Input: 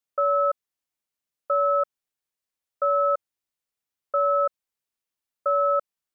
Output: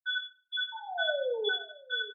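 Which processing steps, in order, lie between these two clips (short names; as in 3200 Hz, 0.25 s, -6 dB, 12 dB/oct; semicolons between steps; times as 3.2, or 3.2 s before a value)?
delay-line pitch shifter -1.5 st; low-pass opened by the level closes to 1000 Hz, open at -21.5 dBFS; loudest bins only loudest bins 2; wide varispeed 2.87×; painted sound fall, 0.72–1.49, 400–920 Hz -30 dBFS; echo 0.616 s -13.5 dB; reverb RT60 0.60 s, pre-delay 3 ms, DRR 3.5 dB; three-band expander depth 70%; gain -7.5 dB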